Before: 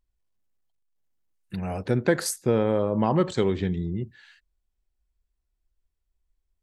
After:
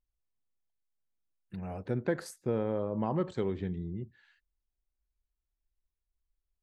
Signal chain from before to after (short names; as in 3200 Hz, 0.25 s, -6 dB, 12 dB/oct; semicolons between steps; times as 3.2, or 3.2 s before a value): high shelf 2900 Hz -11 dB; gain -8.5 dB